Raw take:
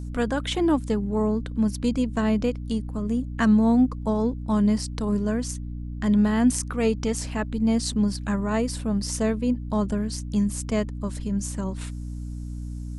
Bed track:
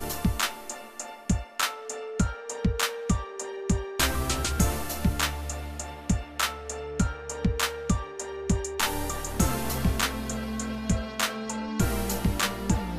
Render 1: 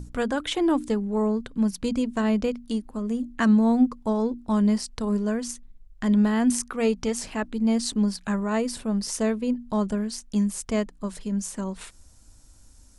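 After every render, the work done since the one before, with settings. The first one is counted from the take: notches 60/120/180/240/300 Hz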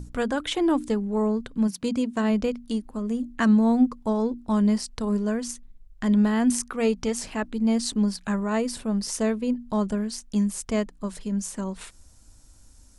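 1.67–2.29 HPF 130 Hz -> 56 Hz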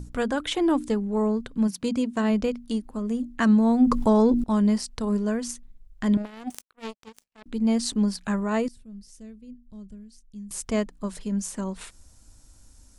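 3.82–4.44 fast leveller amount 70%; 6.17–7.46 power-law curve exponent 3; 8.68–10.51 passive tone stack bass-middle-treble 10-0-1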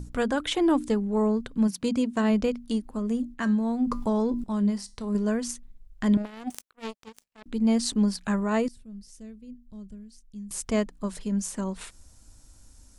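3.34–5.15 resonator 200 Hz, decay 0.28 s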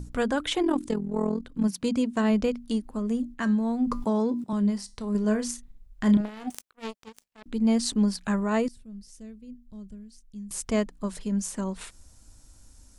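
0.62–1.65 AM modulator 42 Hz, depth 65%; 4.04–4.53 HPF 110 Hz 24 dB/oct; 5.21–6.48 doubler 33 ms -8 dB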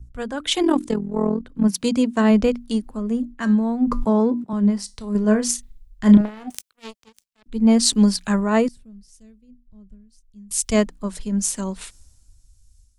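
AGC gain up to 6 dB; three-band expander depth 70%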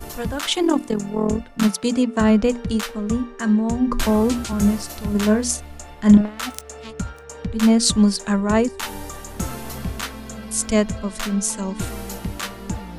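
add bed track -2.5 dB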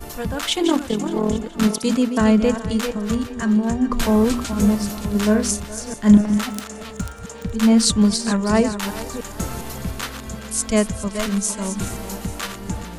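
reverse delay 0.297 s, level -9 dB; thinning echo 0.419 s, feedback 49%, high-pass 420 Hz, level -14 dB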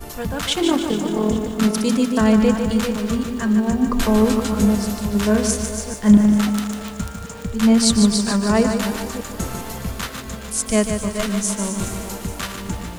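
lo-fi delay 0.149 s, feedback 55%, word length 7-bit, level -7 dB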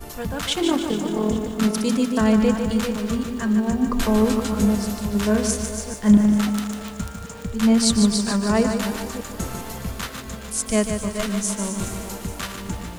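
gain -2.5 dB

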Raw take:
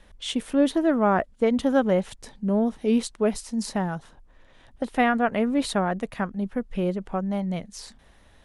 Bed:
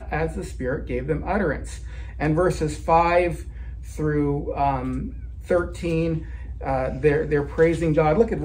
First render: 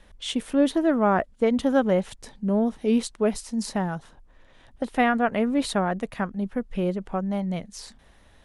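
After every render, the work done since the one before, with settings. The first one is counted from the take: nothing audible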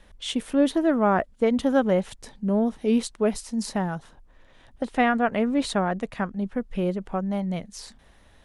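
4.83–6.6 LPF 9700 Hz 24 dB/oct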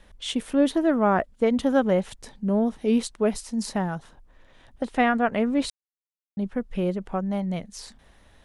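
5.7–6.37 mute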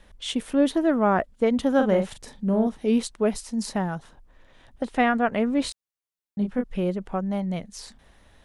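1.75–2.67 doubler 42 ms -6.5 dB; 5.63–6.64 doubler 24 ms -4 dB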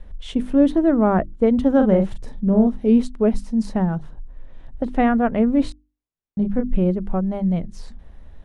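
tilt -3.5 dB/oct; notches 50/100/150/200/250/300/350 Hz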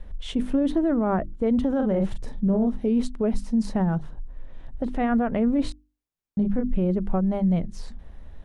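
limiter -15.5 dBFS, peak gain reduction 10.5 dB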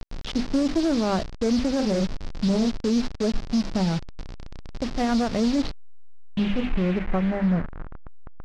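level-crossing sampler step -29 dBFS; low-pass sweep 5000 Hz -> 1300 Hz, 5.49–8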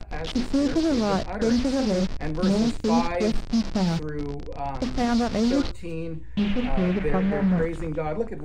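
add bed -9.5 dB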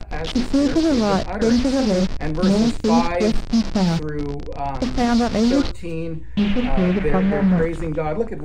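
gain +5 dB

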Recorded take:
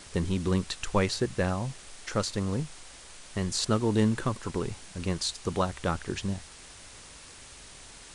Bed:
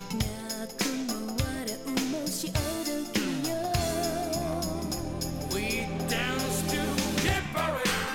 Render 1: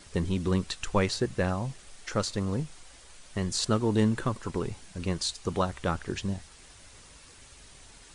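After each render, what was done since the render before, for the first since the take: denoiser 6 dB, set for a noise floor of -49 dBFS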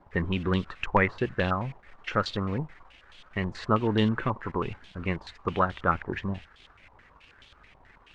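crossover distortion -56 dBFS; stepped low-pass 9.3 Hz 920–3300 Hz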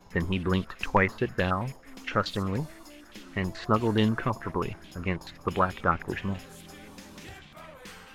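add bed -18.5 dB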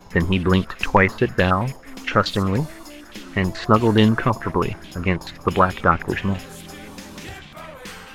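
gain +9 dB; limiter -2 dBFS, peak gain reduction 3 dB

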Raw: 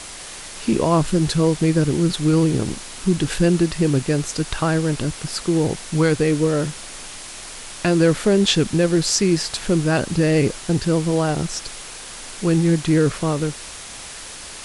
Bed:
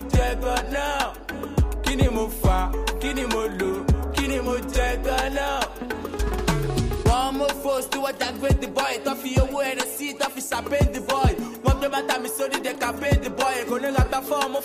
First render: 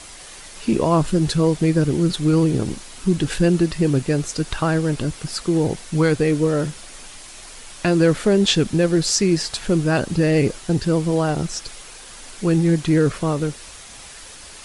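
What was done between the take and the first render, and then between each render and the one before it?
denoiser 6 dB, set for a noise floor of -36 dBFS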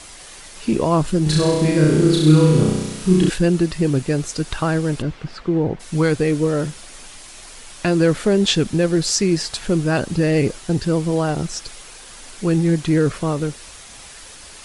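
1.23–3.3 flutter echo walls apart 5.6 m, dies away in 1.1 s; 5.01–5.79 LPF 3400 Hz -> 1800 Hz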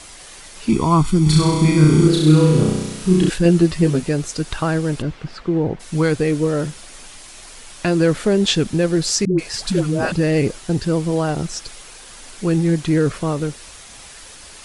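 0.69–2.08 comb 0.9 ms, depth 83%; 3.44–4.09 doubler 12 ms -3 dB; 9.25–10.12 dispersion highs, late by 0.135 s, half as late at 530 Hz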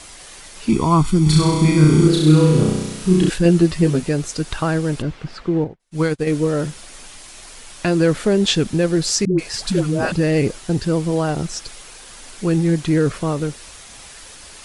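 5.64–6.27 upward expander 2.5:1, over -38 dBFS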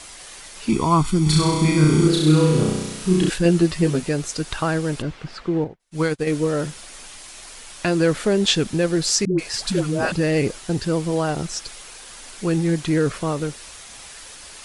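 low shelf 410 Hz -4.5 dB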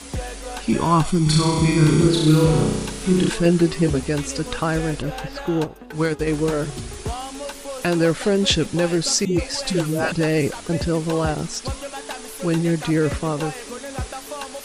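add bed -9 dB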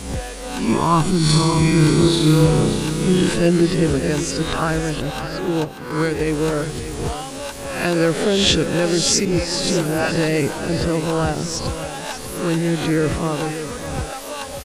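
spectral swells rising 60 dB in 0.66 s; echo 0.587 s -11.5 dB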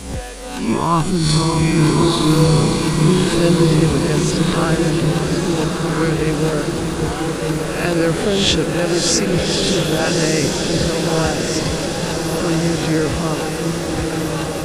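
diffused feedback echo 1.241 s, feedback 59%, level -3.5 dB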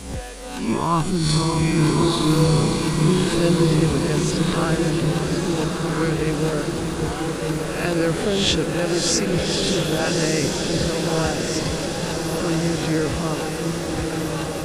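gain -4 dB

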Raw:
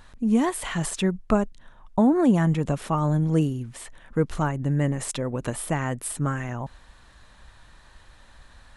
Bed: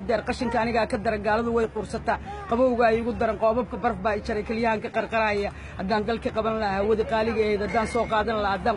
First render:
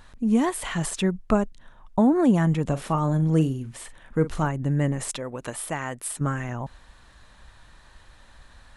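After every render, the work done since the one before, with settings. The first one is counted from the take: 2.63–4.47 doubler 44 ms -13 dB; 5.16–6.21 low shelf 340 Hz -10.5 dB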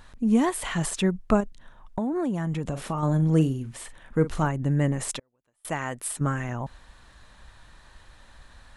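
1.4–3.03 compressor, threshold -24 dBFS; 5.19–5.65 flipped gate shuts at -34 dBFS, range -39 dB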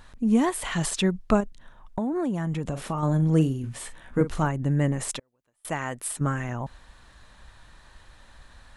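0.72–1.39 bell 4300 Hz +5 dB 1.3 oct; 3.62–4.21 doubler 16 ms -2 dB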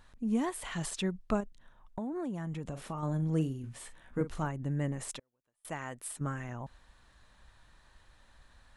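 gain -9.5 dB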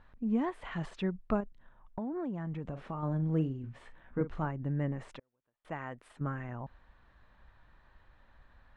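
LPF 2200 Hz 12 dB/oct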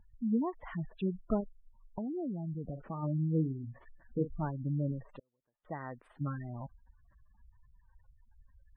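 spectral gate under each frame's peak -15 dB strong; high shelf 2900 Hz -10 dB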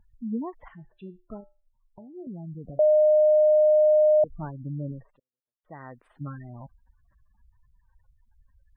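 0.68–2.27 resonator 120 Hz, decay 0.3 s, harmonics odd, mix 70%; 2.79–4.24 bleep 611 Hz -15 dBFS; 4.98–5.8 dip -17.5 dB, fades 0.18 s

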